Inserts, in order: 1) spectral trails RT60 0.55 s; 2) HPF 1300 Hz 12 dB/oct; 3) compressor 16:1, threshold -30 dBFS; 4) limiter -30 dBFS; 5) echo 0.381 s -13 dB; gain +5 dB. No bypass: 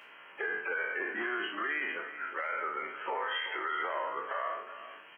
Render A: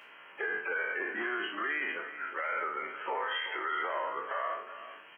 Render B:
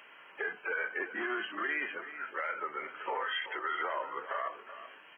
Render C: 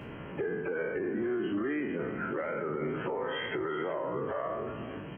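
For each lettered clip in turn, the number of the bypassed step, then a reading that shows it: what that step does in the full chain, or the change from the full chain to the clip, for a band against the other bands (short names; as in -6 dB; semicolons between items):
3, mean gain reduction 1.5 dB; 1, momentary loudness spread change +2 LU; 2, 250 Hz band +17.0 dB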